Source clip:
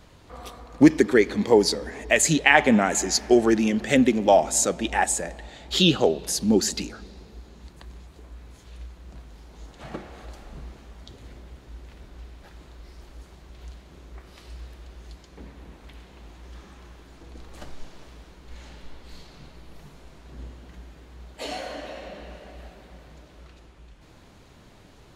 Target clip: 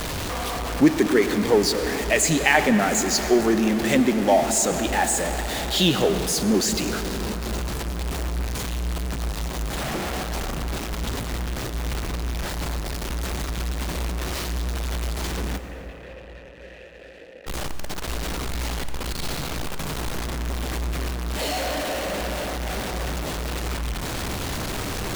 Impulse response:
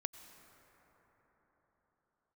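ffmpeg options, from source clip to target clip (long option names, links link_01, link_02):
-filter_complex "[0:a]aeval=exprs='val(0)+0.5*0.1*sgn(val(0))':channel_layout=same,asplit=3[link_01][link_02][link_03];[link_01]afade=type=out:start_time=15.57:duration=0.02[link_04];[link_02]asplit=3[link_05][link_06][link_07];[link_05]bandpass=frequency=530:width_type=q:width=8,volume=0dB[link_08];[link_06]bandpass=frequency=1840:width_type=q:width=8,volume=-6dB[link_09];[link_07]bandpass=frequency=2480:width_type=q:width=8,volume=-9dB[link_10];[link_08][link_09][link_10]amix=inputs=3:normalize=0,afade=type=in:start_time=15.57:duration=0.02,afade=type=out:start_time=17.46:duration=0.02[link_11];[link_03]afade=type=in:start_time=17.46:duration=0.02[link_12];[link_04][link_11][link_12]amix=inputs=3:normalize=0[link_13];[1:a]atrim=start_sample=2205,asetrate=48510,aresample=44100[link_14];[link_13][link_14]afir=irnorm=-1:irlink=0"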